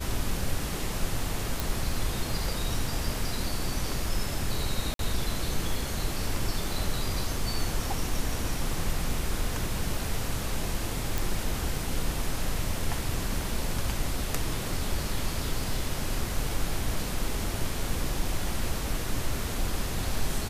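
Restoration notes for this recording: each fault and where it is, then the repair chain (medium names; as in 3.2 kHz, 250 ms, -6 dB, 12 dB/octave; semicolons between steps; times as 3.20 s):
1.60 s: pop
4.94–4.99 s: dropout 52 ms
11.18 s: pop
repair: de-click; interpolate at 4.94 s, 52 ms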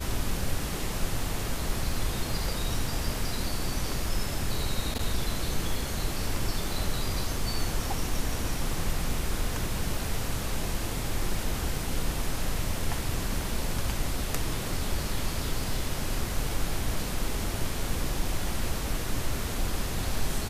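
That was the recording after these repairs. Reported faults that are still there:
nothing left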